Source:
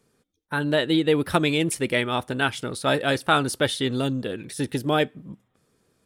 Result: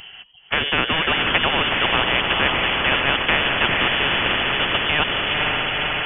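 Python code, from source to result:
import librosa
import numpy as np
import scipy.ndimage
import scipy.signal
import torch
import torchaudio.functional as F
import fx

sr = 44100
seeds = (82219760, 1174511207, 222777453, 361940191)

y = fx.echo_diffused(x, sr, ms=481, feedback_pct=47, wet_db=-7)
y = fx.freq_invert(y, sr, carrier_hz=3200)
y = fx.spectral_comp(y, sr, ratio=4.0)
y = y * 10.0 ** (2.5 / 20.0)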